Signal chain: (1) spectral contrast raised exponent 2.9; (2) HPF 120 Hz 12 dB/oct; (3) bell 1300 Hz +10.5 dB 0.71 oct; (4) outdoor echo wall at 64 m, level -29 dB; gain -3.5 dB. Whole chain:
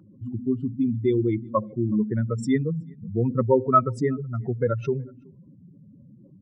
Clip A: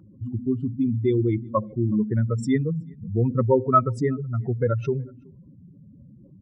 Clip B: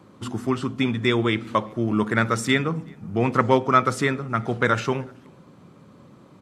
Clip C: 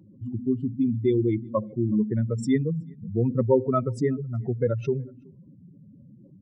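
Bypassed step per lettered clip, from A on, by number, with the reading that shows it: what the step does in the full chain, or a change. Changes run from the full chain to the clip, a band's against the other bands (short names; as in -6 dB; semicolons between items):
2, 125 Hz band +3.0 dB; 1, 2 kHz band +16.5 dB; 3, 1 kHz band -9.0 dB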